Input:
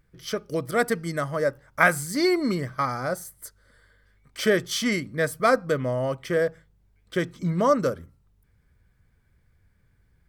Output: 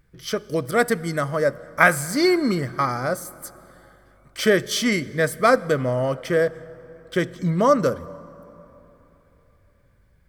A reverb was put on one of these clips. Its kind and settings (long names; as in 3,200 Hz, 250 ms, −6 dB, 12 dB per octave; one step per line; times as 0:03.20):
dense smooth reverb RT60 3.6 s, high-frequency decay 0.55×, DRR 18.5 dB
level +3.5 dB